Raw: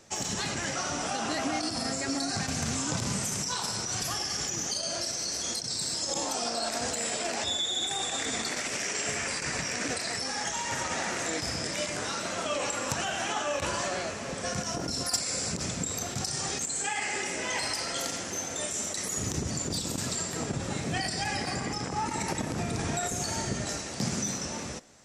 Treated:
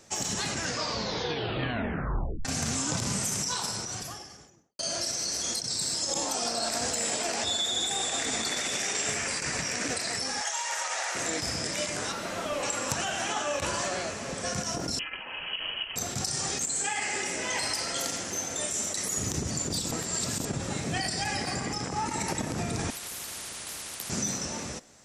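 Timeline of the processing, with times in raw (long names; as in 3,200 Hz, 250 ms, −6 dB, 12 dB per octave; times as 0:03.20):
0:00.53: tape stop 1.92 s
0:03.51–0:04.79: fade out and dull
0:05.50–0:09.14: single-tap delay 923 ms −8.5 dB
0:10.41–0:11.15: high-pass filter 580 Hz 24 dB per octave
0:12.12–0:12.63: linear delta modulator 64 kbit/s, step −47.5 dBFS
0:14.99–0:15.96: voice inversion scrambler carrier 3,100 Hz
0:19.91–0:20.45: reverse
0:22.90–0:24.10: every bin compressed towards the loudest bin 10 to 1
whole clip: high-shelf EQ 7,400 Hz +4.5 dB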